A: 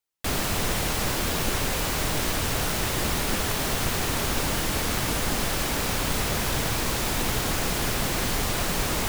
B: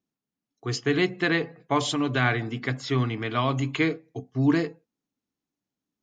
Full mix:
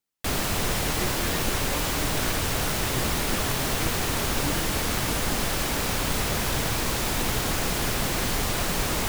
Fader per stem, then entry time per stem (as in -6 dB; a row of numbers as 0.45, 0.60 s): 0.0, -13.0 dB; 0.00, 0.00 s